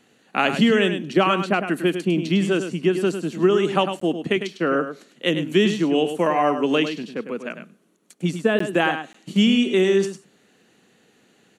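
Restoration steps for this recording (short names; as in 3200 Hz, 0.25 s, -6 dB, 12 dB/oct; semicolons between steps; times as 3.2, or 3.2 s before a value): interpolate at 4/8.59/9.13, 14 ms; inverse comb 0.102 s -9 dB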